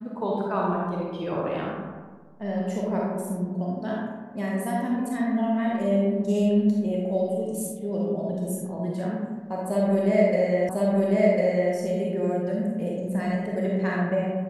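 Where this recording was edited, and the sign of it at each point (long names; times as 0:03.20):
0:10.69: the same again, the last 1.05 s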